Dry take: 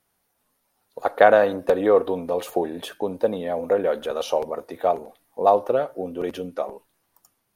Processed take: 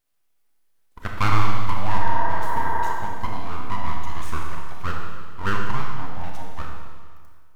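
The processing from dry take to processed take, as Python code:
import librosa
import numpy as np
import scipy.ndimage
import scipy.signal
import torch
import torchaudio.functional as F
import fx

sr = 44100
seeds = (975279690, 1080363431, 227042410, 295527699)

y = np.abs(x)
y = fx.spec_repair(y, sr, seeds[0], start_s=2.03, length_s=0.88, low_hz=300.0, high_hz=2100.0, source='before')
y = fx.rev_schroeder(y, sr, rt60_s=1.8, comb_ms=25, drr_db=0.5)
y = y * librosa.db_to_amplitude(-5.5)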